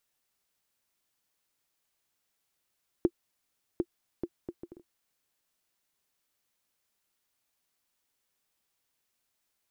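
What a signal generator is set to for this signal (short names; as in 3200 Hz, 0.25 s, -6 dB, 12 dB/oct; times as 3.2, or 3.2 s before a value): bouncing ball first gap 0.75 s, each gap 0.58, 346 Hz, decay 55 ms -12.5 dBFS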